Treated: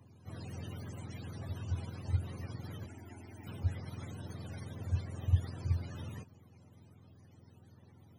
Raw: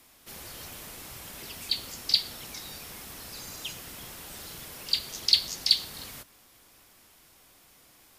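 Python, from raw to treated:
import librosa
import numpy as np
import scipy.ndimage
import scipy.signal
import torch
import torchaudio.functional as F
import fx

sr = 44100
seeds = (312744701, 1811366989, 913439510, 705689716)

y = fx.octave_mirror(x, sr, pivot_hz=510.0)
y = fx.fixed_phaser(y, sr, hz=780.0, stages=8, at=(2.86, 3.47))
y = fx.hpss(y, sr, part='percussive', gain_db=3)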